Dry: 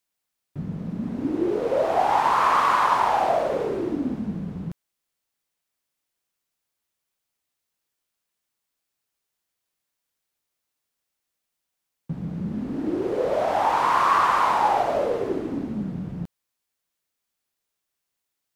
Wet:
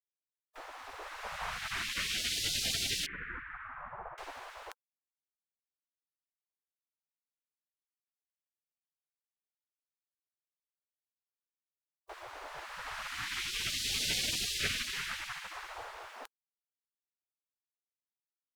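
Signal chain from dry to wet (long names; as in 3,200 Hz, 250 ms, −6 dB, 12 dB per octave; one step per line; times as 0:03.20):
0:03.06–0:04.18: Bessel low-pass filter 1,100 Hz, order 6
gate on every frequency bin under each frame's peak −30 dB weak
level +8 dB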